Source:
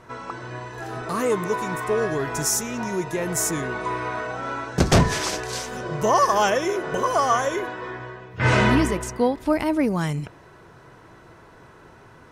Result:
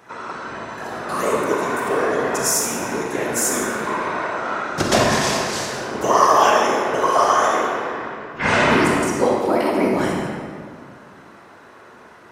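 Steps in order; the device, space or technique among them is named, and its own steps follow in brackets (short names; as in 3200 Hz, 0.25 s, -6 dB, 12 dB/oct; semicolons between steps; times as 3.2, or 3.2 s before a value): whispering ghost (whisperiser; HPF 380 Hz 6 dB/oct; reverb RT60 2.1 s, pre-delay 33 ms, DRR -1.5 dB); gain +2 dB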